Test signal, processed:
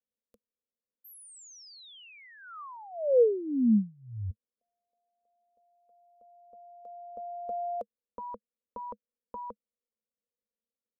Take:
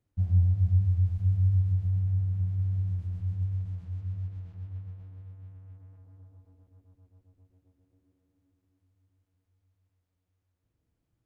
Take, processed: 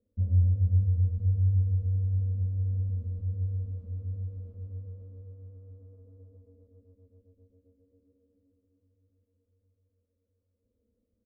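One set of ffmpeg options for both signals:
-af "firequalizer=gain_entry='entry(100,0);entry(150,-29);entry(210,14);entry(340,-6);entry(480,15);entry(760,-15);entry(1200,-10);entry(1700,-21);entry(3100,-19)':delay=0.05:min_phase=1"

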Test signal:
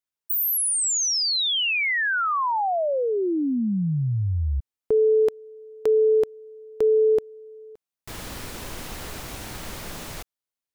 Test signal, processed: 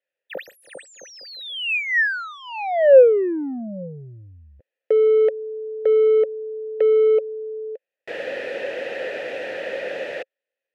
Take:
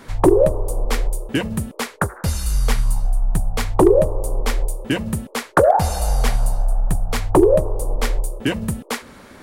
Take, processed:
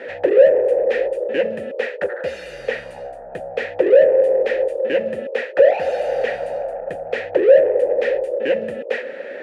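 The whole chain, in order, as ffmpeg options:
-filter_complex "[0:a]asplit=2[a][b];[b]highpass=f=720:p=1,volume=30dB,asoftclip=type=tanh:threshold=-3dB[c];[a][c]amix=inputs=2:normalize=0,lowpass=f=1.1k:p=1,volume=-6dB,asplit=3[d][e][f];[d]bandpass=f=530:t=q:w=8,volume=0dB[g];[e]bandpass=f=1.84k:t=q:w=8,volume=-6dB[h];[f]bandpass=f=2.48k:t=q:w=8,volume=-9dB[i];[g][h][i]amix=inputs=3:normalize=0,volume=4.5dB"

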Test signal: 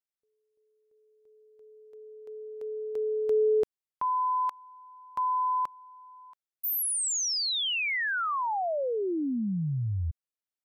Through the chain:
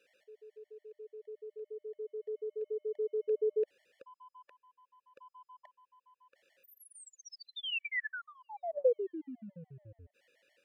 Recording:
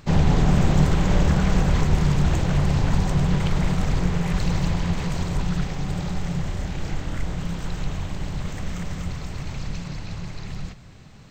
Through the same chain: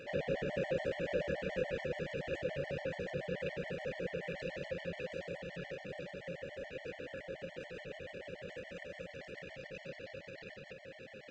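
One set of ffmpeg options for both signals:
-filter_complex "[0:a]acompressor=mode=upward:threshold=-22dB:ratio=2.5:attack=0.15:release=24:knee=2.83:detection=peak,asplit=3[a][b][c];[a]bandpass=f=530:t=q:w=8,volume=0dB[d];[b]bandpass=f=1.84k:t=q:w=8,volume=-6dB[e];[c]bandpass=f=2.48k:t=q:w=8,volume=-9dB[f];[d][e][f]amix=inputs=3:normalize=0,afftfilt=real='re*gt(sin(2*PI*7*pts/sr)*(1-2*mod(floor(b*sr/1024/580),2)),0)':imag='im*gt(sin(2*PI*7*pts/sr)*(1-2*mod(floor(b*sr/1024/580),2)),0)':win_size=1024:overlap=0.75,volume=5dB"

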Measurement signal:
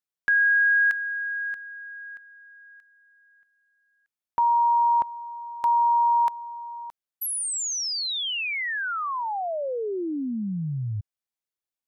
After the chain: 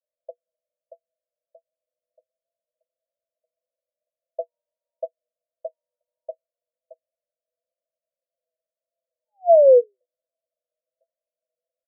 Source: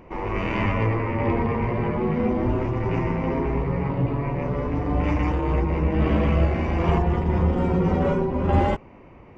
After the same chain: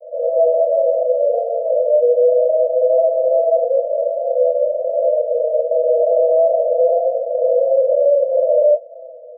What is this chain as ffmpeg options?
-af "aecho=1:1:2.7:0.59,flanger=delay=4.9:depth=5.3:regen=45:speed=0.25:shape=triangular,asuperpass=centerf=570:order=20:qfactor=3.1,alimiter=level_in=33.5dB:limit=-1dB:release=50:level=0:latency=1,volume=-6dB"

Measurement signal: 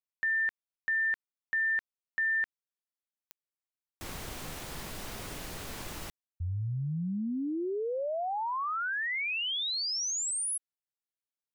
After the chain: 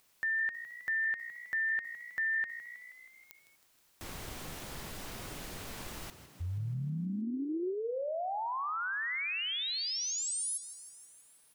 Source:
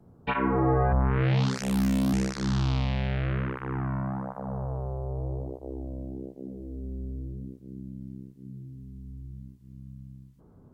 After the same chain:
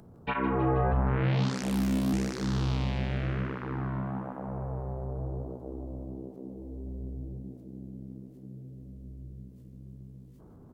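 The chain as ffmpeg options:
-filter_complex "[0:a]acompressor=mode=upward:threshold=-42dB:ratio=2.5:attack=1.3:release=31:knee=2.83:detection=peak,asplit=8[a][b][c][d][e][f][g][h];[b]adelay=159,afreqshift=59,volume=-13dB[i];[c]adelay=318,afreqshift=118,volume=-16.9dB[j];[d]adelay=477,afreqshift=177,volume=-20.8dB[k];[e]adelay=636,afreqshift=236,volume=-24.6dB[l];[f]adelay=795,afreqshift=295,volume=-28.5dB[m];[g]adelay=954,afreqshift=354,volume=-32.4dB[n];[h]adelay=1113,afreqshift=413,volume=-36.3dB[o];[a][i][j][k][l][m][n][o]amix=inputs=8:normalize=0,volume=-3dB"

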